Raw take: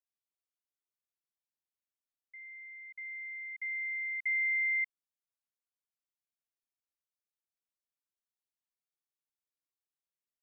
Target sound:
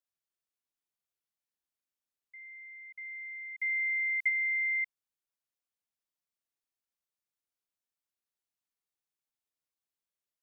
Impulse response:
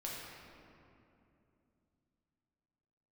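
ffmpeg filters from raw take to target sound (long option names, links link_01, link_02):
-filter_complex "[0:a]asplit=3[link_01][link_02][link_03];[link_01]afade=type=out:start_time=3.59:duration=0.02[link_04];[link_02]highshelf=frequency=2000:gain=10.5,afade=type=in:start_time=3.59:duration=0.02,afade=type=out:start_time=4.28:duration=0.02[link_05];[link_03]afade=type=in:start_time=4.28:duration=0.02[link_06];[link_04][link_05][link_06]amix=inputs=3:normalize=0"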